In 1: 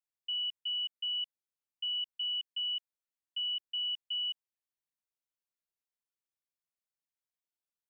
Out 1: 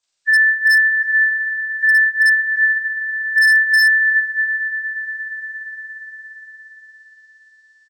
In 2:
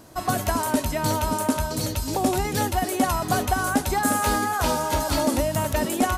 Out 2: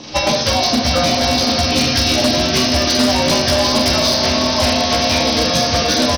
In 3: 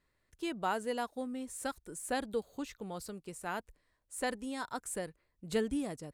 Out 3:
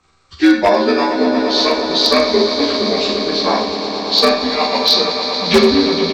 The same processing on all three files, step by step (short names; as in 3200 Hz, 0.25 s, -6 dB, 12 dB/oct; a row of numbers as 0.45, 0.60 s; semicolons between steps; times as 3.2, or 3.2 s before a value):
inharmonic rescaling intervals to 79%; LPF 6800 Hz 12 dB/oct; high shelf 3300 Hz +11.5 dB; compressor 12:1, threshold -29 dBFS; transient shaper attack +6 dB, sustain -6 dB; doubler 13 ms -3 dB; swelling echo 0.116 s, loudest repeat 5, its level -12 dB; Schroeder reverb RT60 0.48 s, combs from 28 ms, DRR 2.5 dB; wavefolder -20 dBFS; match loudness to -14 LUFS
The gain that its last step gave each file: +11.5, +12.5, +17.5 dB